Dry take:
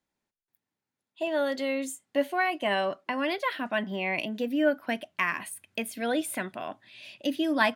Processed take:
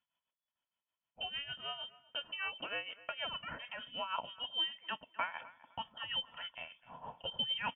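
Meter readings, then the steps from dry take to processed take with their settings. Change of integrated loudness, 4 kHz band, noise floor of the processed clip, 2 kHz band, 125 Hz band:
-10.0 dB, +1.5 dB, under -85 dBFS, -12.0 dB, -12.5 dB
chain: comb 2.5 ms, depth 52%; tremolo 6.5 Hz, depth 71%; compression 1.5:1, threshold -45 dBFS, peak gain reduction 8.5 dB; graphic EQ with 31 bands 200 Hz -9 dB, 315 Hz +5 dB, 630 Hz -5 dB, 2.5 kHz +9 dB; on a send: thinning echo 255 ms, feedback 25%, level -19 dB; on the sum: frequency inversion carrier 3.4 kHz; trim -4 dB

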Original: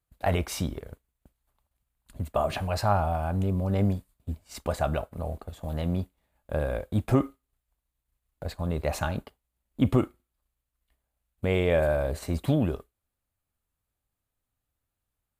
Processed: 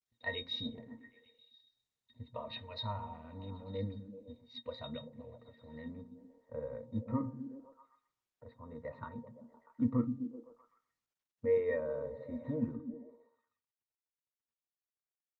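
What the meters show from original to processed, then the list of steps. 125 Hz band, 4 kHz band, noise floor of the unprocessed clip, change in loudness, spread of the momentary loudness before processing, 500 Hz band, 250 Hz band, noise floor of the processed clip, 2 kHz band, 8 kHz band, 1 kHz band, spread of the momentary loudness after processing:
-16.0 dB, -3.0 dB, -85 dBFS, -10.5 dB, 14 LU, -9.5 dB, -9.0 dB, under -85 dBFS, -10.0 dB, under -35 dB, -16.0 dB, 21 LU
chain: frequency weighting D; spectral noise reduction 7 dB; de-hum 132.6 Hz, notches 9; dynamic bell 120 Hz, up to -7 dB, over -50 dBFS, Q 3.8; pitch-class resonator A#, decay 0.12 s; low-pass sweep 3.8 kHz -> 1.3 kHz, 4.92–6.15 s; repeats whose band climbs or falls 128 ms, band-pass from 150 Hz, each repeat 0.7 oct, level -5.5 dB; trim +2 dB; Opus 24 kbps 48 kHz

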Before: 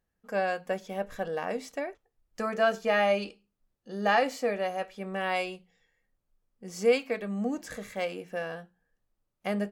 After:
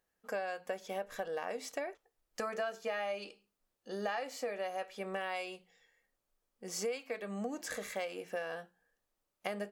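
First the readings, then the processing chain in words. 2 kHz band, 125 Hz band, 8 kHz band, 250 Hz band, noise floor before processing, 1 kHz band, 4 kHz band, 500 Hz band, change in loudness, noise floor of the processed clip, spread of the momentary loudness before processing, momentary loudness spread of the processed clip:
-9.0 dB, no reading, +1.0 dB, -11.0 dB, -82 dBFS, -9.5 dB, -7.0 dB, -9.0 dB, -9.5 dB, -85 dBFS, 14 LU, 8 LU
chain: tone controls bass -13 dB, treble +2 dB; compression 6:1, threshold -37 dBFS, peak gain reduction 17 dB; trim +2 dB

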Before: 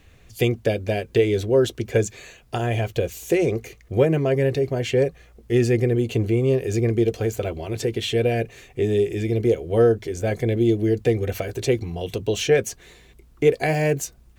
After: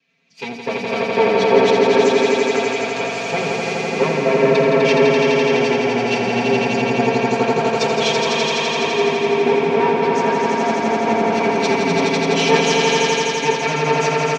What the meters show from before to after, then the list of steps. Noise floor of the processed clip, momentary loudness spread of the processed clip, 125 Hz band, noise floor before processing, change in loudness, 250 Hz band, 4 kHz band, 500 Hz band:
-26 dBFS, 7 LU, -4.5 dB, -52 dBFS, +5.5 dB, +3.5 dB, +11.5 dB, +5.0 dB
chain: comb filter that takes the minimum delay 7.4 ms; peaking EQ 2.4 kHz +9.5 dB 0.26 oct; in parallel at +1 dB: compressor with a negative ratio -32 dBFS, ratio -1; on the sum: Chebyshev band-pass 160–5300 Hz, order 3; comb 4.4 ms, depth 72%; on a send: echo with a slow build-up 84 ms, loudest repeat 5, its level -3 dB; on the sum: three bands expanded up and down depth 70%; trim -2 dB

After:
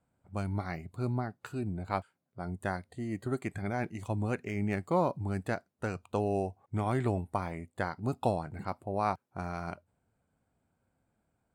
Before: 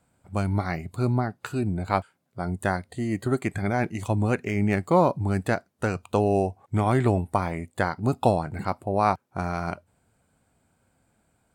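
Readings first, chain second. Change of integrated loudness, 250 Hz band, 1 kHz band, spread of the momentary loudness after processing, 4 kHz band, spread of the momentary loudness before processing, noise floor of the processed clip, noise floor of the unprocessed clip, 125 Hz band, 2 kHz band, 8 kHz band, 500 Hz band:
-8.5 dB, -8.5 dB, -8.5 dB, 9 LU, -9.0 dB, 9 LU, -80 dBFS, -70 dBFS, -8.5 dB, -8.5 dB, -10.0 dB, -8.5 dB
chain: tape noise reduction on one side only decoder only; trim -8.5 dB

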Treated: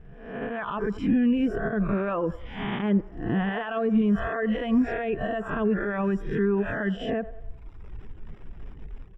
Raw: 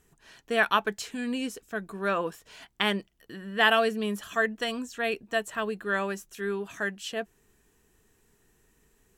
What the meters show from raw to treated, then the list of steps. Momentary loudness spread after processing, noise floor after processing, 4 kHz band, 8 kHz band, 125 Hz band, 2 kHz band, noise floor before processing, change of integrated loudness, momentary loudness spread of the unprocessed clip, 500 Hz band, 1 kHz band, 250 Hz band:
21 LU, -45 dBFS, -11.0 dB, under -20 dB, +12.0 dB, -5.5 dB, -67 dBFS, +2.5 dB, 13 LU, +2.5 dB, -2.5 dB, +10.5 dB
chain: reverse spectral sustain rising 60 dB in 0.74 s; compression 4:1, threshold -30 dBFS, peak gain reduction 13 dB; bass shelf 270 Hz +8 dB; crackle 410 per s -42 dBFS; reverb removal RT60 1.2 s; on a send: feedback echo behind a band-pass 95 ms, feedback 48%, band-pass 800 Hz, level -19 dB; on the sum: peak limiter -28 dBFS, peak gain reduction 10.5 dB; level rider gain up to 11 dB; Savitzky-Golay filter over 25 samples; tilt EQ -3.5 dB/octave; trim -4 dB

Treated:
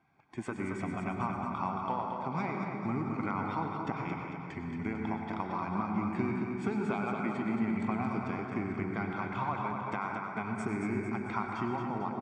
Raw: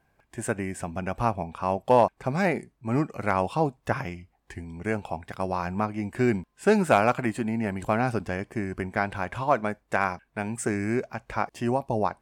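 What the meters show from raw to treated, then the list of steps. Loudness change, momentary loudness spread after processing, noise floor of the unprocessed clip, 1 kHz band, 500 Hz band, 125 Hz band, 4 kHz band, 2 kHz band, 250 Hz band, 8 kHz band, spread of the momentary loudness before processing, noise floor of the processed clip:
-7.5 dB, 4 LU, -71 dBFS, -7.0 dB, -12.5 dB, -6.5 dB, -10.0 dB, -8.5 dB, -4.0 dB, under -15 dB, 11 LU, -42 dBFS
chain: coarse spectral quantiser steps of 15 dB; high-pass 180 Hz 12 dB/octave; compression 5:1, threshold -33 dBFS, peak gain reduction 17 dB; distance through air 170 m; comb 0.9 ms, depth 66%; feedback delay 224 ms, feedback 52%, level -6 dB; plate-style reverb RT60 2 s, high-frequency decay 0.3×, pre-delay 85 ms, DRR 3 dB

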